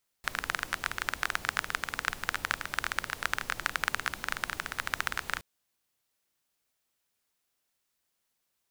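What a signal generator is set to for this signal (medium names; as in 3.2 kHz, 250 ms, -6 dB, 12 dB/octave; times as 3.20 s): rain from filtered ticks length 5.17 s, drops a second 18, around 1.5 kHz, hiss -11 dB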